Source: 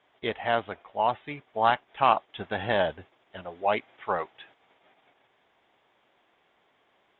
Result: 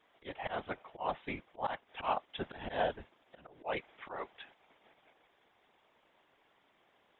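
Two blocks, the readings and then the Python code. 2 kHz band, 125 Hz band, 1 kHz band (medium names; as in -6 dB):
-10.5 dB, -10.0 dB, -12.0 dB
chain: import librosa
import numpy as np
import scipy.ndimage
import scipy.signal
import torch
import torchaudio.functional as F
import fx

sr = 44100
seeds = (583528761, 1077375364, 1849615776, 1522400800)

y = fx.auto_swell(x, sr, attack_ms=224.0)
y = fx.whisperise(y, sr, seeds[0])
y = y * librosa.db_to_amplitude(-3.0)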